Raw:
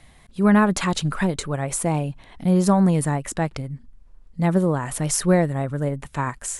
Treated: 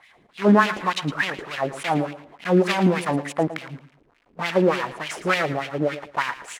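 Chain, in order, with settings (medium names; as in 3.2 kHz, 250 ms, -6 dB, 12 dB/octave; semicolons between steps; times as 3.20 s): block-companded coder 3-bit; LFO band-pass sine 3.4 Hz 290–2700 Hz; on a send: feedback delay 112 ms, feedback 28%, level -13.5 dB; on the sum: trim +8.5 dB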